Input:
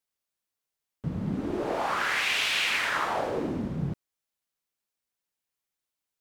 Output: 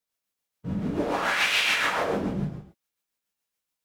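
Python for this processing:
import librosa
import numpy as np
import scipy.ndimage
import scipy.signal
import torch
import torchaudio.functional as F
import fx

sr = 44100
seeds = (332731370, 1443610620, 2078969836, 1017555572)

y = fx.stretch_vocoder(x, sr, factor=0.62)
y = fx.rev_gated(y, sr, seeds[0], gate_ms=310, shape='falling', drr_db=-5.0)
y = y * (1.0 - 0.37 / 2.0 + 0.37 / 2.0 * np.cos(2.0 * np.pi * 7.0 * (np.arange(len(y)) / sr)))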